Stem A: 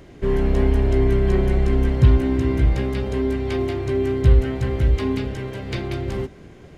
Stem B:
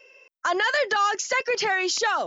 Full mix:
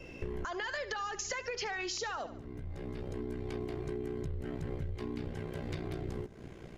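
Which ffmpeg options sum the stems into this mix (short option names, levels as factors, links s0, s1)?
-filter_complex "[0:a]adynamicequalizer=threshold=0.00355:dfrequency=2800:dqfactor=0.9:tfrequency=2800:tqfactor=0.9:attack=5:release=100:ratio=0.375:range=2:mode=cutabove:tftype=bell,alimiter=limit=0.168:level=0:latency=1:release=42,aeval=exprs='val(0)*sin(2*PI*30*n/s)':c=same,volume=0.794[s0];[1:a]acompressor=threshold=0.0501:ratio=6,volume=0.891,asplit=3[s1][s2][s3];[s2]volume=0.178[s4];[s3]apad=whole_len=298798[s5];[s0][s5]sidechaincompress=threshold=0.00447:ratio=16:attack=6.7:release=977[s6];[s4]aecho=0:1:72|144|216|288|360:1|0.35|0.122|0.0429|0.015[s7];[s6][s1][s7]amix=inputs=3:normalize=0,acompressor=threshold=0.0178:ratio=5"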